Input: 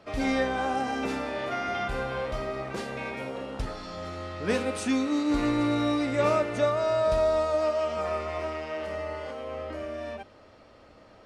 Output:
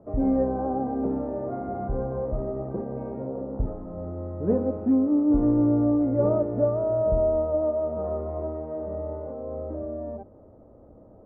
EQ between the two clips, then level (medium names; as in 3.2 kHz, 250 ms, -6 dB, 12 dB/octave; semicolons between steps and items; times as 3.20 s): Bessel low-pass 510 Hz, order 4; distance through air 150 m; +6.5 dB